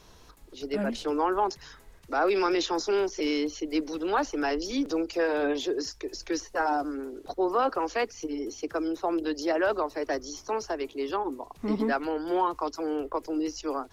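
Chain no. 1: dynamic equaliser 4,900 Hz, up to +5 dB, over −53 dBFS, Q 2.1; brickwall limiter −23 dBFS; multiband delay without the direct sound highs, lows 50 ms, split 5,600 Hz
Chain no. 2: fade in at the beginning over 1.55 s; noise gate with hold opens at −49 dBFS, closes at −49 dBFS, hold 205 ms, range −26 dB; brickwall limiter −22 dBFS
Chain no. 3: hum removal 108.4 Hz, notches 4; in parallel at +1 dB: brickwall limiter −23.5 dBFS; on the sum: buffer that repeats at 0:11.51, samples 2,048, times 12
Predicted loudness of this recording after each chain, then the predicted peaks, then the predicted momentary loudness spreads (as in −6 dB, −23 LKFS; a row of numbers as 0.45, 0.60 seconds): −32.5, −32.0, −24.5 LKFS; −20.5, −22.0, −11.5 dBFS; 5, 6, 7 LU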